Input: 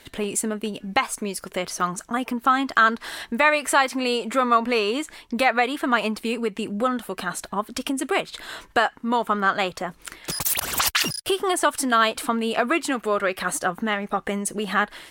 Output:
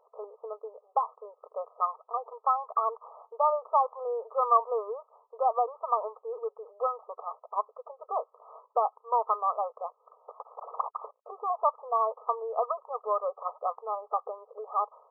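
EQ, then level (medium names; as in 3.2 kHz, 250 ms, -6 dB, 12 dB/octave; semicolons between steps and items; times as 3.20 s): dynamic bell 1 kHz, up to +4 dB, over -31 dBFS, Q 1.7; brick-wall FIR band-pass 420–1300 Hz; -6.0 dB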